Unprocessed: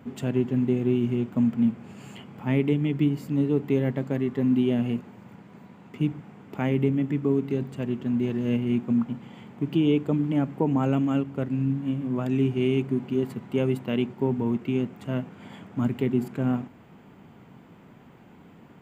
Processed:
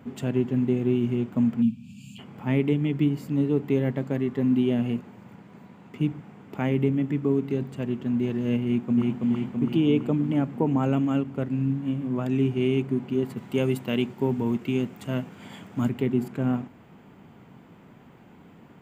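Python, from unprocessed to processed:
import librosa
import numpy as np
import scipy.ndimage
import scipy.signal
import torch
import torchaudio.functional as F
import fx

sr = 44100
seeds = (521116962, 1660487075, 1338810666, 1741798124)

y = fx.spec_box(x, sr, start_s=1.62, length_s=0.57, low_hz=270.0, high_hz=2300.0, gain_db=-29)
y = fx.echo_throw(y, sr, start_s=8.64, length_s=0.58, ms=330, feedback_pct=65, wet_db=-1.5)
y = fx.high_shelf(y, sr, hz=3300.0, db=9.0, at=(13.37, 15.89))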